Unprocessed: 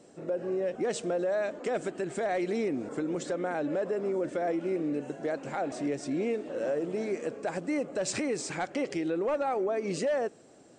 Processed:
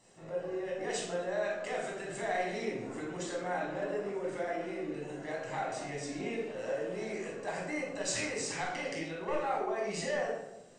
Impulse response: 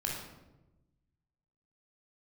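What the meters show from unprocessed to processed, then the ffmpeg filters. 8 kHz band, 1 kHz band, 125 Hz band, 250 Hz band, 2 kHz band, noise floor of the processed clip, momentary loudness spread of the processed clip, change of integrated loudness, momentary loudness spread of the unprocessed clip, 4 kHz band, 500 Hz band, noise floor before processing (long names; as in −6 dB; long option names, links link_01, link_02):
0.0 dB, −1.0 dB, −3.5 dB, −8.0 dB, +1.0 dB, −48 dBFS, 6 LU, −4.5 dB, 4 LU, +1.5 dB, −5.5 dB, −55 dBFS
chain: -filter_complex "[0:a]equalizer=frequency=230:width=0.55:gain=-14[link_01];[1:a]atrim=start_sample=2205,asetrate=52920,aresample=44100[link_02];[link_01][link_02]afir=irnorm=-1:irlink=0"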